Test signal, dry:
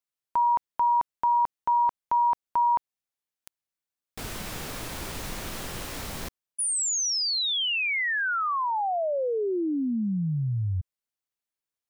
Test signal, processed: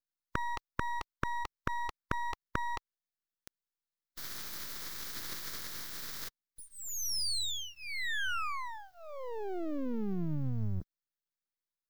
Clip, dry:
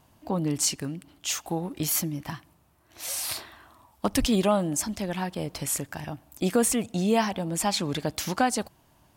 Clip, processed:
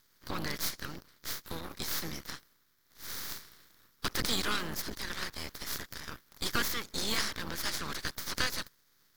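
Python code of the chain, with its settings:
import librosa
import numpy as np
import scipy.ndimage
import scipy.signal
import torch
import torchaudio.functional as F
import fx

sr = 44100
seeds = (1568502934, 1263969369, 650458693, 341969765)

y = fx.spec_clip(x, sr, under_db=28)
y = fx.fixed_phaser(y, sr, hz=2700.0, stages=6)
y = np.maximum(y, 0.0)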